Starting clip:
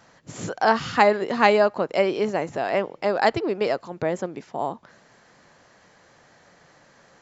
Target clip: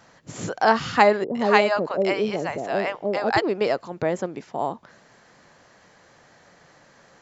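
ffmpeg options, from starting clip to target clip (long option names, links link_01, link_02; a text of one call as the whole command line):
ffmpeg -i in.wav -filter_complex "[0:a]asettb=1/sr,asplit=3[link_01][link_02][link_03];[link_01]atrim=end=1.244[link_04];[link_02]atrim=start=1.24:end=3.42,asetpts=PTS-STARTPTS,afade=type=in:duration=0.004:curve=qsin,afade=type=out:start_time=2.176:duration=0.004:curve=qsin,acrossover=split=650[link_05][link_06];[link_06]adelay=110[link_07];[link_05][link_07]amix=inputs=2:normalize=0,atrim=end_sample=96138[link_08];[link_03]atrim=start=3.416[link_09];[link_04][link_08]acrossfade=duration=0.004:curve1=hsin:curve2=qsin[link_10];[link_10][link_09]acrossfade=duration=0.004:curve1=qsin:curve2=hsin,volume=1dB" out.wav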